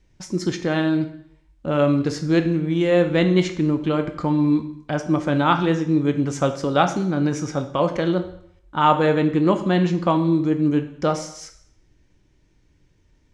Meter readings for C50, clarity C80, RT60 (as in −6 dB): 11.0 dB, 14.0 dB, 0.70 s